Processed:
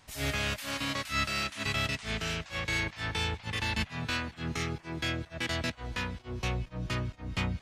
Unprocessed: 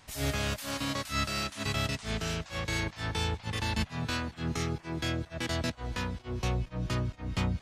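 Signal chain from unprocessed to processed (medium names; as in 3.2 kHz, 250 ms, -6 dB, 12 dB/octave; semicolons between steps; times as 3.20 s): dynamic bell 2.3 kHz, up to +7 dB, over -49 dBFS, Q 0.94; trim -2.5 dB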